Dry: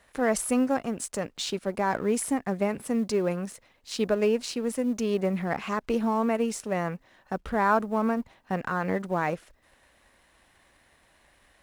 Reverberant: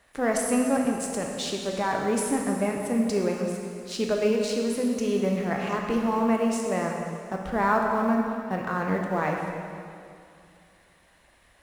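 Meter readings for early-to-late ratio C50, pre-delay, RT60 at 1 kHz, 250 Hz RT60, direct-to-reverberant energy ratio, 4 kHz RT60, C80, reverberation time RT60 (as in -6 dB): 2.0 dB, 13 ms, 2.4 s, 2.6 s, 0.5 dB, 2.2 s, 3.5 dB, 2.5 s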